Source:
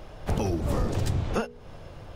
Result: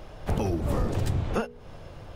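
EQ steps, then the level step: dynamic bell 5.7 kHz, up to -4 dB, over -53 dBFS, Q 0.92; 0.0 dB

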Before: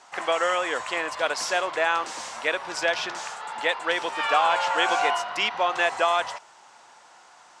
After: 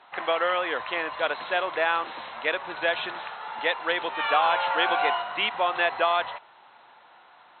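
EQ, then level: brick-wall FIR low-pass 4.2 kHz; -1.0 dB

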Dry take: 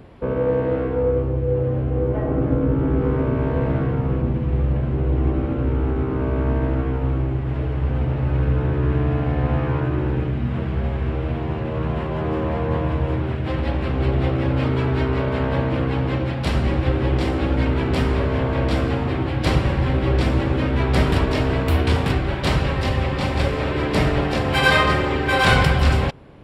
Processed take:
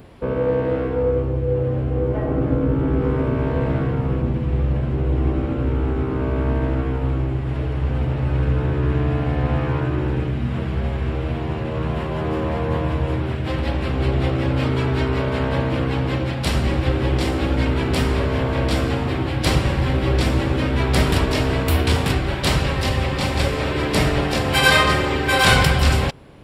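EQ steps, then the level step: treble shelf 4.6 kHz +12 dB; 0.0 dB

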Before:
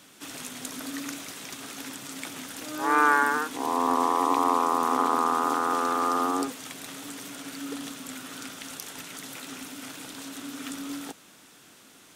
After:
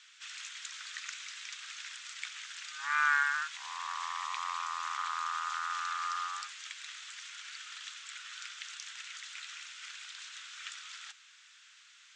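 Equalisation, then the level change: inverse Chebyshev high-pass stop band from 560 Hz, stop band 50 dB; elliptic low-pass 7.5 kHz, stop band 80 dB; distance through air 55 m; 0.0 dB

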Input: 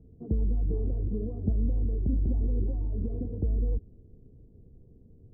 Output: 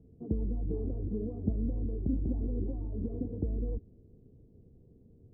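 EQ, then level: dynamic bell 290 Hz, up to +4 dB, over -47 dBFS, Q 4.1; distance through air 350 m; bass shelf 77 Hz -10 dB; 0.0 dB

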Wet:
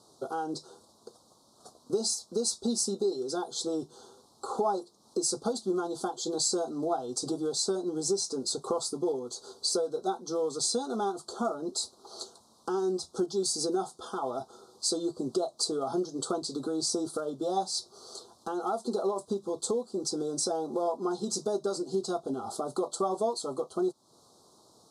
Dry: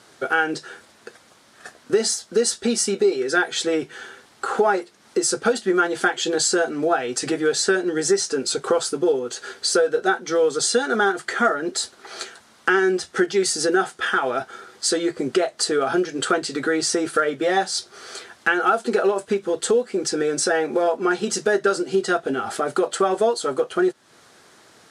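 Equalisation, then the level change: elliptic band-stop 1.1–4 kHz, stop band 80 dB; dynamic bell 460 Hz, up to -5 dB, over -31 dBFS, Q 2.3; -6.5 dB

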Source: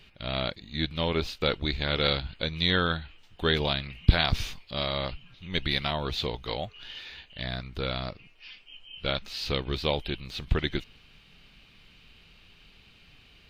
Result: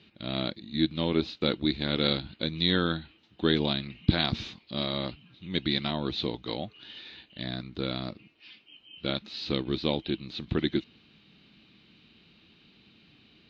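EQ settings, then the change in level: distance through air 77 m; cabinet simulation 150–6800 Hz, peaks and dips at 220 Hz +7 dB, 320 Hz +10 dB, 3.9 kHz +8 dB; bass shelf 230 Hz +9 dB; -4.5 dB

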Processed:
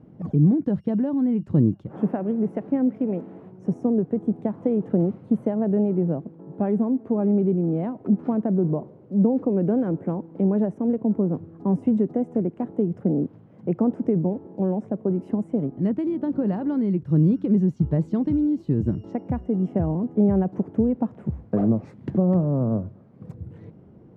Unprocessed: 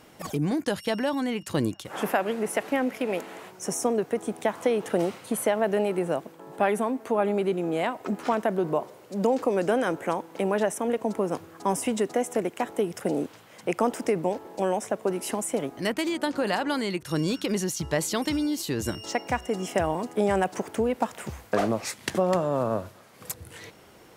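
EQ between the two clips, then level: band-pass filter 170 Hz, Q 1.2; tilt EQ -2.5 dB/octave; +5.5 dB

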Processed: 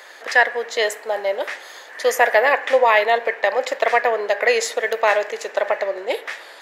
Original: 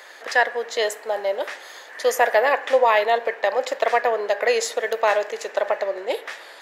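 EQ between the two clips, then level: dynamic bell 2.1 kHz, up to +5 dB, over -38 dBFS, Q 2.1; +1.5 dB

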